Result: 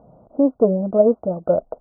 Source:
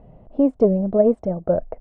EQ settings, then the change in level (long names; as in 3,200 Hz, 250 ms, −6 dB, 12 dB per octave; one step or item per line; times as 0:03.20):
high-pass filter 260 Hz 6 dB per octave
linear-phase brick-wall low-pass 1,500 Hz
notch filter 400 Hz, Q 12
+3.0 dB